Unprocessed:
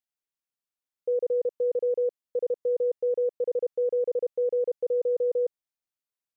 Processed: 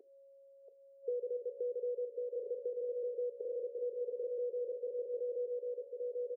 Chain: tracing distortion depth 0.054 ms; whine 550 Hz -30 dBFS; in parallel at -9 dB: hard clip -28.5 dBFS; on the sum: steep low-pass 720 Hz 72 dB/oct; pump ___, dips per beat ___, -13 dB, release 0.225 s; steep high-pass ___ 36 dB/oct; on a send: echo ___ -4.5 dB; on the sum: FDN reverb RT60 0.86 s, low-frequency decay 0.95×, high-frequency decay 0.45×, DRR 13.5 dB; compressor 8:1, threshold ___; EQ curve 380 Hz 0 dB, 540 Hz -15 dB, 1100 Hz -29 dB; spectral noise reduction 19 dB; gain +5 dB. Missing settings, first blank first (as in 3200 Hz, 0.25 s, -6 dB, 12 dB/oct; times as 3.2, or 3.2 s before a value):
88 bpm, 1, 430 Hz, 1.095 s, -28 dBFS